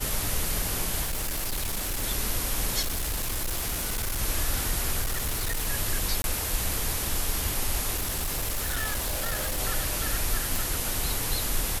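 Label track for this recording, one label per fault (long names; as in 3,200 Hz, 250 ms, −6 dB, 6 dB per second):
1.030000	2.040000	clipping −26 dBFS
2.810000	4.210000	clipping −25.5 dBFS
5.010000	5.690000	clipping −24.5 dBFS
6.220000	6.240000	drop-out 21 ms
7.960000	9.600000	clipping −25 dBFS
10.560000	10.560000	click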